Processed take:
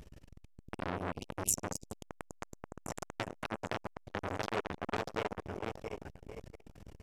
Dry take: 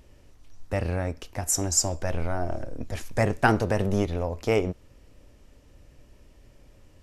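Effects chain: backward echo that repeats 340 ms, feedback 58%, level -6 dB; de-hum 187.6 Hz, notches 3; spectral selection erased 0.62–2.40 s, 290–2200 Hz; echo from a far wall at 43 m, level -17 dB; compression 12:1, threshold -27 dBFS, peak gain reduction 13.5 dB; transformer saturation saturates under 3.9 kHz; trim +4.5 dB

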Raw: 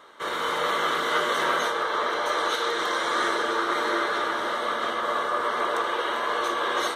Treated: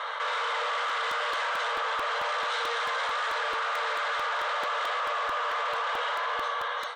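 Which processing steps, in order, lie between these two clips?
fade out at the end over 1.63 s; in parallel at +2 dB: peak limiter -22 dBFS, peak gain reduction 11 dB; on the sum: overload inside the chain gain 24 dB; three-band isolator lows -12 dB, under 560 Hz, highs -16 dB, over 4.4 kHz; saturation -25 dBFS, distortion -16 dB; FFT band-pass 440–9100 Hz; crackling interface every 0.22 s, samples 128, repeat, from 0.89 s; level flattener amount 70%

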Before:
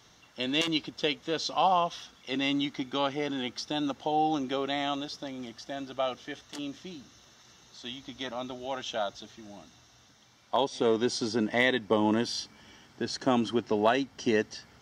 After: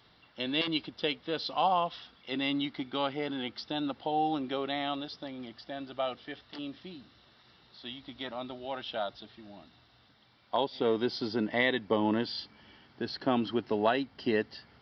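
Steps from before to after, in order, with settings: resampled via 11.025 kHz; trim -2.5 dB

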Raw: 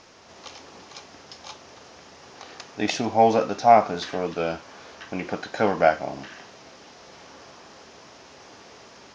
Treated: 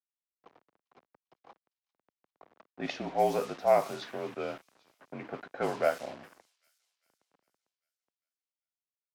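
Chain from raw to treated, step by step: word length cut 6-bit, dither none; high-pass 250 Hz 12 dB/octave; frequency shift -46 Hz; level-controlled noise filter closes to 880 Hz, open at -16 dBFS; on a send: feedback echo behind a high-pass 398 ms, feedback 50%, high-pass 4.7 kHz, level -16.5 dB; on the sum: trim -9 dB

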